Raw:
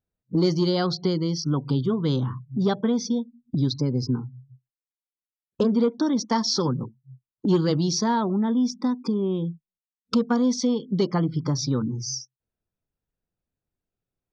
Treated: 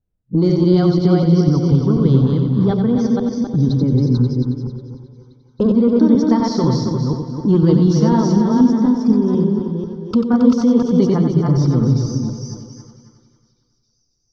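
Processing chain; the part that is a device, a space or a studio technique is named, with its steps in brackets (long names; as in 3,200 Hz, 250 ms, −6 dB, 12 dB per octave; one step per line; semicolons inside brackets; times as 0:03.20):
delay that plays each chunk backwards 246 ms, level −2 dB
spectral tilt −3 dB per octave
multi-head tape echo (echo machine with several playback heads 91 ms, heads first and third, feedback 48%, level −8 dB; tape wow and flutter 11 cents)
echo through a band-pass that steps 267 ms, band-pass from 280 Hz, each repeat 0.7 octaves, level −12 dB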